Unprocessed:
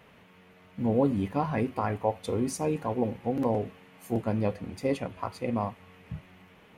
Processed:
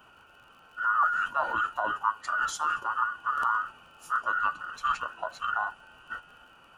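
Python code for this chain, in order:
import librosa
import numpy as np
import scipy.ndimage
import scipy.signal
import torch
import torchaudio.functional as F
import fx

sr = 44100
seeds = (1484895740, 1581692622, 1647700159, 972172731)

y = fx.band_invert(x, sr, width_hz=2000)
y = fx.formant_shift(y, sr, semitones=-4)
y = fx.dmg_crackle(y, sr, seeds[0], per_s=36.0, level_db=-49.0)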